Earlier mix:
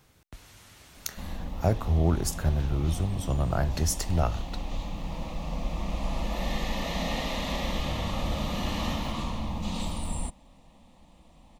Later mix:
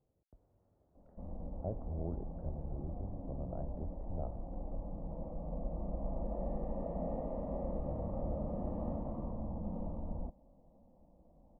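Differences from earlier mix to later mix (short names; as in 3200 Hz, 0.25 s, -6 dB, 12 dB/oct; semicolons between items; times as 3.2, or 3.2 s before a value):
speech -9.0 dB; master: add ladder low-pass 720 Hz, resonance 40%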